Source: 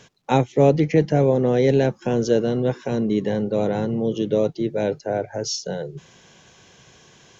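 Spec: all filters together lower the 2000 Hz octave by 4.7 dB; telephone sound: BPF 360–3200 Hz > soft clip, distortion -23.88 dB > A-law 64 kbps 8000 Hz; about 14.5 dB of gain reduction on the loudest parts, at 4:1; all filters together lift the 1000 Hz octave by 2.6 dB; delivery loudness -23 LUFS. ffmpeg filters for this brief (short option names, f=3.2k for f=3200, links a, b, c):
-af "equalizer=f=1k:t=o:g=5.5,equalizer=f=2k:t=o:g=-8,acompressor=threshold=-28dB:ratio=4,highpass=360,lowpass=3.2k,asoftclip=threshold=-20dB,volume=12dB" -ar 8000 -c:a pcm_alaw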